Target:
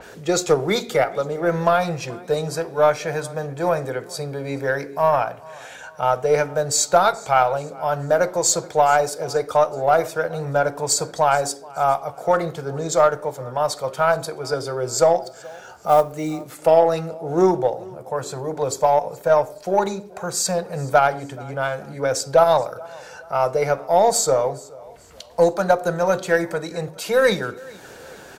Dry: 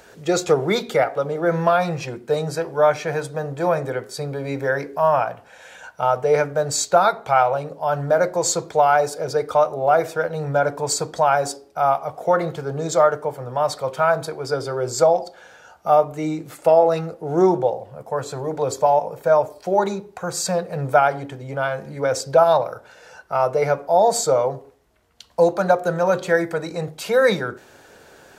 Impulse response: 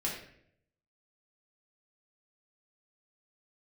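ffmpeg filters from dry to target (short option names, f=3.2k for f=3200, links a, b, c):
-filter_complex "[0:a]acompressor=mode=upward:threshold=-32dB:ratio=2.5,aecho=1:1:427|854|1281:0.0794|0.0342|0.0147,aeval=exprs='0.794*(cos(1*acos(clip(val(0)/0.794,-1,1)))-cos(1*PI/2))+0.0141*(cos(6*acos(clip(val(0)/0.794,-1,1)))-cos(6*PI/2))+0.0158*(cos(7*acos(clip(val(0)/0.794,-1,1)))-cos(7*PI/2))+0.00501*(cos(8*acos(clip(val(0)/0.794,-1,1)))-cos(8*PI/2))':c=same,asettb=1/sr,asplit=3[a][b][c];[a]atrim=end=15.234[d];[b]atrim=start=15.23:end=16.45,asetpts=PTS-STARTPTS,afade=t=in:d=0.004:c=qsin,afade=t=out:st=1.216:d=0.004:c=qsin,acrusher=bits=8:mode=log:mix=0:aa=0.000001[e];[c]atrim=start=16.446[f];[d][e]acrossfade=d=0.004:c1=hsin:c2=qsin[g];[g][f]acrossfade=d=0.004:c1=qsin:c2=hsin,asplit=2[h][i];[1:a]atrim=start_sample=2205,adelay=47[j];[i][j]afir=irnorm=-1:irlink=0,volume=-26dB[k];[h][k]amix=inputs=2:normalize=0,adynamicequalizer=threshold=0.0112:dfrequency=4100:dqfactor=0.7:tfrequency=4100:tqfactor=0.7:attack=5:release=100:ratio=0.375:range=2.5:mode=boostabove:tftype=highshelf"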